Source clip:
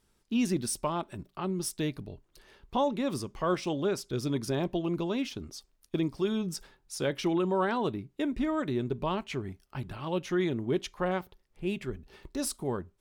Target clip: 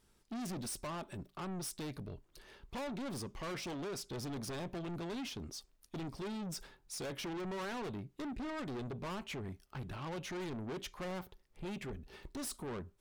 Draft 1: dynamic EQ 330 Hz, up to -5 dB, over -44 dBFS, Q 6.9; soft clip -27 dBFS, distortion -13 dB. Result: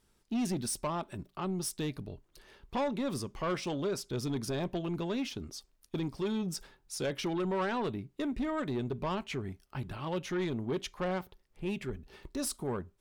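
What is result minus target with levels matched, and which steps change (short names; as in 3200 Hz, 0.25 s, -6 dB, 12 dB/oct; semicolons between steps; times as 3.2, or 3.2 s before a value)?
soft clip: distortion -9 dB
change: soft clip -39 dBFS, distortion -5 dB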